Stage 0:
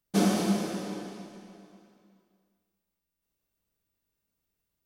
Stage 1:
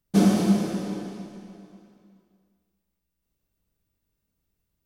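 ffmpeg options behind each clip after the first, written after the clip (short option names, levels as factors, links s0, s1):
-af "lowshelf=f=270:g=10.5"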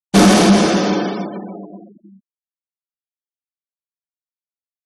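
-filter_complex "[0:a]asplit=2[s0][s1];[s1]highpass=f=720:p=1,volume=14.1,asoftclip=type=tanh:threshold=0.422[s2];[s0][s2]amix=inputs=2:normalize=0,lowpass=f=7100:p=1,volume=0.501,afftfilt=real='re*gte(hypot(re,im),0.0224)':imag='im*gte(hypot(re,im),0.0224)':win_size=1024:overlap=0.75,volume=2"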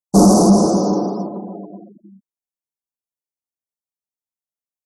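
-af "asuperstop=centerf=2400:order=8:qfactor=0.56"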